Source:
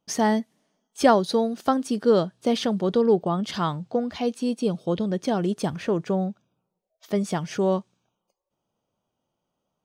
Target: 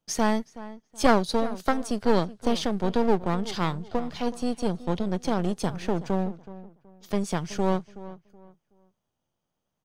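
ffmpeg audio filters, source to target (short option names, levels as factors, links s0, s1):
-filter_complex "[0:a]acrossover=split=160|3300[s0][s1][s2];[s1]aeval=exprs='max(val(0),0)':c=same[s3];[s0][s3][s2]amix=inputs=3:normalize=0,asplit=2[s4][s5];[s5]adelay=374,lowpass=f=2200:p=1,volume=0.158,asplit=2[s6][s7];[s7]adelay=374,lowpass=f=2200:p=1,volume=0.28,asplit=2[s8][s9];[s9]adelay=374,lowpass=f=2200:p=1,volume=0.28[s10];[s4][s6][s8][s10]amix=inputs=4:normalize=0"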